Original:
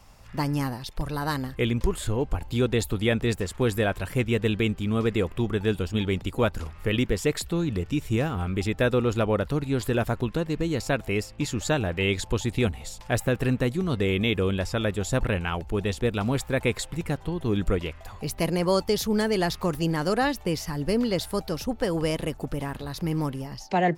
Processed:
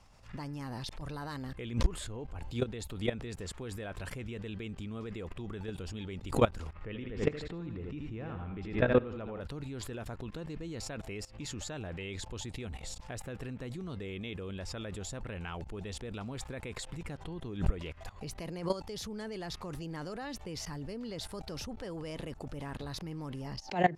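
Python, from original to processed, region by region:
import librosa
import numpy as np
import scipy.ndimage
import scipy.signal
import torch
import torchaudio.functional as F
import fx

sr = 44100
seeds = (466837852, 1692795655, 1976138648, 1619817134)

y = fx.chain(x, sr, fx.lowpass(hz=2500.0, slope=12),
    fx.echo_feedback(ms=81, feedback_pct=45, wet_db=-8), at=(6.73, 9.41))
y = fx.level_steps(y, sr, step_db=20)
y = scipy.signal.sosfilt(scipy.signal.butter(2, 8700.0, 'lowpass', fs=sr, output='sos'), y)
y = fx.pre_swell(y, sr, db_per_s=150.0)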